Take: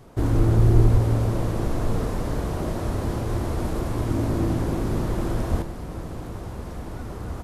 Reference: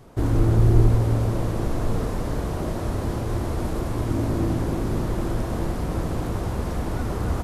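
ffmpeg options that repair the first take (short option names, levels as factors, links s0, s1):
-filter_complex "[0:a]asplit=3[s0][s1][s2];[s0]afade=t=out:st=0.93:d=0.02[s3];[s1]highpass=f=140:w=0.5412,highpass=f=140:w=1.3066,afade=t=in:st=0.93:d=0.02,afade=t=out:st=1.05:d=0.02[s4];[s2]afade=t=in:st=1.05:d=0.02[s5];[s3][s4][s5]amix=inputs=3:normalize=0,asplit=3[s6][s7][s8];[s6]afade=t=out:st=5.5:d=0.02[s9];[s7]highpass=f=140:w=0.5412,highpass=f=140:w=1.3066,afade=t=in:st=5.5:d=0.02,afade=t=out:st=5.62:d=0.02[s10];[s8]afade=t=in:st=5.62:d=0.02[s11];[s9][s10][s11]amix=inputs=3:normalize=0,asetnsamples=n=441:p=0,asendcmd='5.62 volume volume 7.5dB',volume=1"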